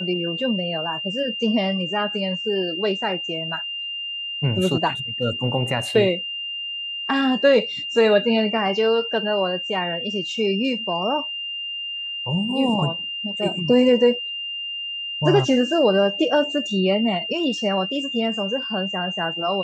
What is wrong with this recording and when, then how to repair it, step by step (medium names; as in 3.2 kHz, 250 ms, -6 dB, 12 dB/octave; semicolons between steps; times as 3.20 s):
whine 2.8 kHz -27 dBFS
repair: band-stop 2.8 kHz, Q 30